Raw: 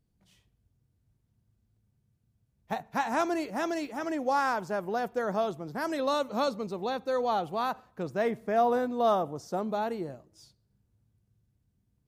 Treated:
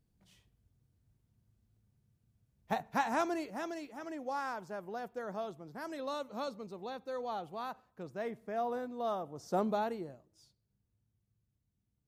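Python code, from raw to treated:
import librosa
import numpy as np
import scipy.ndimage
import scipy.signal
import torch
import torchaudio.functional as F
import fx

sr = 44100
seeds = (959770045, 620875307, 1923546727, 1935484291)

y = fx.gain(x, sr, db=fx.line((2.87, -1.0), (3.82, -10.5), (9.29, -10.5), (9.59, 1.0), (10.14, -9.0)))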